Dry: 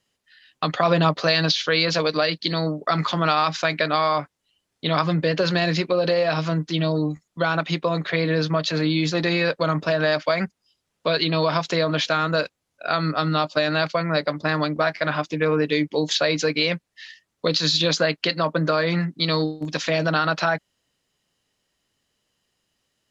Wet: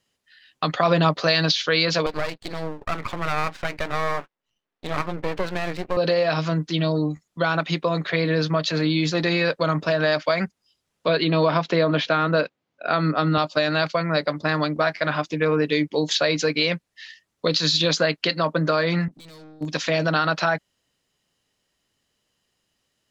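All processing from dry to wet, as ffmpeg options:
-filter_complex "[0:a]asettb=1/sr,asplit=3[s0][s1][s2];[s0]atrim=end=2.064[s3];[s1]atrim=start=2.06:end=5.97,asetpts=PTS-STARTPTS,afade=t=in:d=0.004:c=qsin,afade=t=out:st=3.906:d=0.004:c=qsin,highpass=250,lowpass=2300,aeval=exprs='max(val(0),0)':c=same[s4];[s2]atrim=start=5.966[s5];[s3][s4]acrossfade=d=0.004:c1=hsin:c2=qsin[s6];[s6][s5]acrossfade=d=0.004:c1=qsin:c2=hsin,asettb=1/sr,asplit=3[s7][s8][s9];[s7]atrim=end=11.084[s10];[s8]atrim=start=11.08:end=13.38,asetpts=PTS-STARTPTS,afade=t=in:d=0.004:c=qsin,afade=t=out:st=2.296:d=0.004:c=qsin,highpass=180,lowpass=3600,lowshelf=f=380:g=7[s11];[s9]atrim=start=13.376[s12];[s10][s11]acrossfade=d=0.004:c1=hsin:c2=qsin[s13];[s13][s12]acrossfade=d=0.004:c1=qsin:c2=hsin,asettb=1/sr,asplit=3[s14][s15][s16];[s14]atrim=end=19.084[s17];[s15]atrim=start=19.08:end=19.61,asetpts=PTS-STARTPTS,afade=t=in:d=0.004:c=qsin,afade=t=out:st=0.526:d=0.004:c=qsin,highpass=f=59:w=0.5412,highpass=f=59:w=1.3066,acompressor=threshold=0.01:ratio=2.5:attack=3.2:release=140:knee=1:detection=peak,aeval=exprs='(tanh(141*val(0)+0.25)-tanh(0.25))/141':c=same[s18];[s16]atrim=start=19.606[s19];[s17][s18]acrossfade=d=0.004:c1=hsin:c2=qsin[s20];[s20][s19]acrossfade=d=0.004:c1=qsin:c2=hsin"

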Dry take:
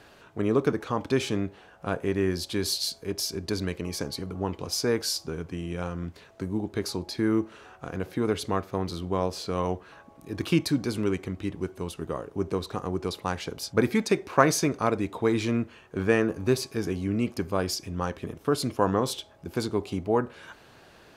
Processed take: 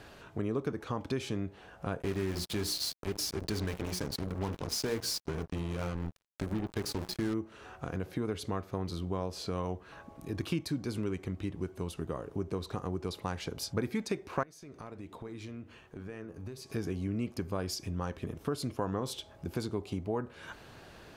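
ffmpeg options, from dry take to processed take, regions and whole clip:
-filter_complex "[0:a]asettb=1/sr,asplit=3[s0][s1][s2];[s0]atrim=end=2.024[s3];[s1]atrim=start=2.02:end=7.34,asetpts=PTS-STARTPTS,afade=t=in:d=0.004:c=qsin,afade=t=out:st=5.316:d=0.004:c=qsin,aeval=exprs='val(0)+0.5*0.0178*sgn(val(0))':c=same,bandreject=f=60:t=h:w=6,bandreject=f=120:t=h:w=6,bandreject=f=180:t=h:w=6,bandreject=f=240:t=h:w=6,bandreject=f=300:t=h:w=6,bandreject=f=360:t=h:w=6,bandreject=f=420:t=h:w=6,bandreject=f=480:t=h:w=6,acrusher=bits=4:mix=0:aa=0.5[s4];[s2]atrim=start=7.336[s5];[s3][s4]acrossfade=d=0.004:c1=hsin:c2=qsin[s6];[s6][s5]acrossfade=d=0.004:c1=qsin:c2=hsin,asettb=1/sr,asplit=3[s7][s8][s9];[s7]atrim=end=14.434[s10];[s8]atrim=start=14.43:end=16.7,asetpts=PTS-STARTPTS,afade=t=in:d=0.004:c=qsin,afade=t=out:st=2.266:d=0.004:c=qsin,acompressor=threshold=0.01:ratio=4:attack=3.2:release=140:knee=1:detection=peak,flanger=delay=3:depth=9.7:regen=86:speed=1.3:shape=triangular[s11];[s9]atrim=start=16.696[s12];[s10][s11]acrossfade=d=0.004:c1=hsin:c2=qsin[s13];[s13][s12]acrossfade=d=0.004:c1=qsin:c2=hsin,lowshelf=f=160:g=6.5,acompressor=threshold=0.0178:ratio=2.5"

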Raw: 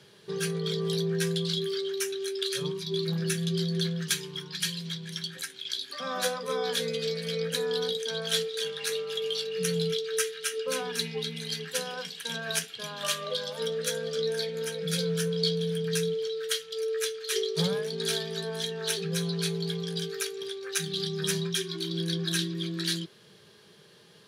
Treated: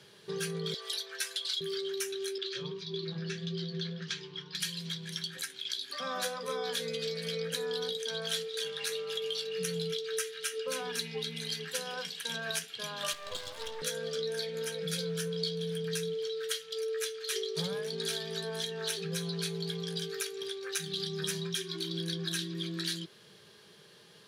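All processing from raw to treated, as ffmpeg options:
-filter_complex "[0:a]asettb=1/sr,asplit=3[s0][s1][s2];[s0]atrim=end=0.744[s3];[s1]atrim=start=0.74:end=1.61,asetpts=PTS-STARTPTS,afade=t=in:d=0.004:c=qsin,afade=t=out:st=0.866:d=0.004:c=qsin,highpass=f=730:w=0.5412,highpass=f=730:w=1.3066,aecho=1:1:4.6:0.97,atrim=end_sample=38367[s4];[s2]atrim=start=1.606[s5];[s3][s4]acrossfade=d=0.004:c1=hsin:c2=qsin[s6];[s6][s5]acrossfade=d=0.004:c1=qsin:c2=hsin,asettb=1/sr,asplit=3[s7][s8][s9];[s7]atrim=end=2.384[s10];[s8]atrim=start=2.38:end=4.55,asetpts=PTS-STARTPTS,afade=t=in:d=0.004:c=qsin,afade=t=out:st=2.166:d=0.004:c=qsin,lowpass=f=5300:w=0.5412,lowpass=f=5300:w=1.3066,flanger=delay=5.4:depth=6.6:regen=-62:speed=1.7:shape=triangular[s11];[s9]atrim=start=4.546[s12];[s10][s11]acrossfade=d=0.004:c1=hsin:c2=qsin[s13];[s13][s12]acrossfade=d=0.004:c1=qsin:c2=hsin,asettb=1/sr,asplit=3[s14][s15][s16];[s14]atrim=end=13.134[s17];[s15]atrim=start=13.13:end=13.82,asetpts=PTS-STARTPTS,afade=t=in:d=0.004:c=qsin,afade=t=out:st=0.686:d=0.004:c=qsin,acrossover=split=6300[s18][s19];[s19]acompressor=threshold=0.00282:ratio=4:attack=1:release=60[s20];[s18][s20]amix=inputs=2:normalize=0,highpass=480,aeval=exprs='max(val(0),0)':c=same[s21];[s16]atrim=start=13.816[s22];[s17][s21]acrossfade=d=0.004:c1=hsin:c2=qsin[s23];[s23][s22]acrossfade=d=0.004:c1=qsin:c2=hsin,lowshelf=f=500:g=-3.5,acompressor=threshold=0.0224:ratio=2.5"

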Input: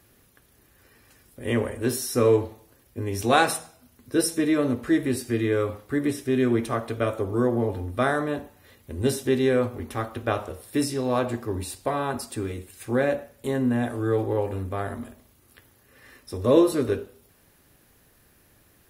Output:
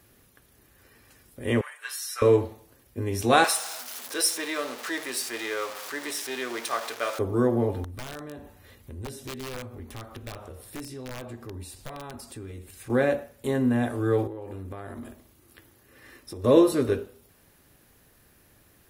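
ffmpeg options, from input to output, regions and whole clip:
-filter_complex "[0:a]asettb=1/sr,asplit=3[s0][s1][s2];[s0]atrim=end=1.614[s3];[s1]atrim=start=1.61:end=2.22,asetpts=PTS-STARTPTS,afade=t=in:d=0.004:c=qsin,afade=t=out:st=0.606:d=0.004:c=qsin,highpass=f=1200:w=0.5412,highpass=f=1200:w=1.3066,highshelf=f=3900:g=-7.5,aecho=1:1:6.8:0.86,atrim=end_sample=26901[s4];[s2]atrim=start=2.216[s5];[s3][s4]acrossfade=d=0.004:c1=hsin:c2=qsin[s6];[s6][s5]acrossfade=d=0.004:c1=qsin:c2=hsin,asettb=1/sr,asplit=3[s7][s8][s9];[s7]atrim=end=3.444[s10];[s8]atrim=start=3.44:end=7.19,asetpts=PTS-STARTPTS,afade=t=in:d=0.004:c=qsin,afade=t=out:st=3.746:d=0.004:c=qsin,aeval=exprs='val(0)+0.5*0.0282*sgn(val(0))':c=same,highpass=760,equalizer=f=5200:t=o:w=1.2:g=4[s11];[s9]atrim=start=7.186[s12];[s10][s11]acrossfade=d=0.004:c1=hsin:c2=qsin[s13];[s13][s12]acrossfade=d=0.004:c1=qsin:c2=hsin,asettb=1/sr,asplit=3[s14][s15][s16];[s14]atrim=end=7.844[s17];[s15]atrim=start=7.84:end=12.9,asetpts=PTS-STARTPTS,afade=t=in:d=0.004:c=qsin,afade=t=out:st=5.056:d=0.004:c=qsin,acompressor=threshold=0.00708:ratio=2.5:attack=3.2:release=140:knee=1:detection=peak,aeval=exprs='(mod(35.5*val(0)+1,2)-1)/35.5':c=same,lowshelf=f=69:g=11.5[s18];[s16]atrim=start=12.896[s19];[s17][s18]acrossfade=d=0.004:c1=hsin:c2=qsin[s20];[s20][s19]acrossfade=d=0.004:c1=qsin:c2=hsin,asettb=1/sr,asplit=3[s21][s22][s23];[s21]atrim=end=14.274[s24];[s22]atrim=start=14.27:end=16.44,asetpts=PTS-STARTPTS,afade=t=in:d=0.004:c=qsin,afade=t=out:st=2.166:d=0.004:c=qsin,equalizer=f=330:w=6.6:g=8.5,acompressor=threshold=0.02:ratio=8:attack=3.2:release=140:knee=1:detection=peak[s25];[s23]atrim=start=16.436[s26];[s24][s25]acrossfade=d=0.004:c1=hsin:c2=qsin[s27];[s27][s26]acrossfade=d=0.004:c1=qsin:c2=hsin"

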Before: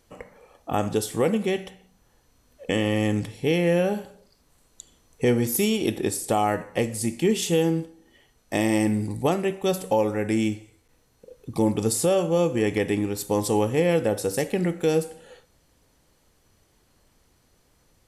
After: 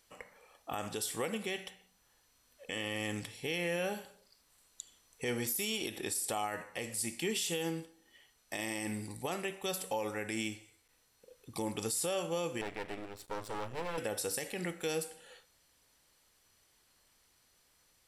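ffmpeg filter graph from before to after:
-filter_complex "[0:a]asettb=1/sr,asplit=3[s0][s1][s2];[s0]atrim=end=12.614[s3];[s1]atrim=start=12.61:end=13.98,asetpts=PTS-STARTPTS,afade=t=in:d=0.004:c=qsin,afade=t=out:st=1.366:d=0.004:c=qsin,lowpass=f=1300:p=1,asubboost=boost=7:cutoff=120,aeval=exprs='max(val(0),0)':c=same[s4];[s2]atrim=start=13.976[s5];[s3][s4]acrossfade=d=0.004:c1=hsin:c2=qsin[s6];[s6][s5]acrossfade=d=0.004:c1=qsin:c2=hsin,tiltshelf=f=790:g=-7.5,bandreject=f=6500:w=16,alimiter=limit=0.15:level=0:latency=1:release=62,volume=0.376"

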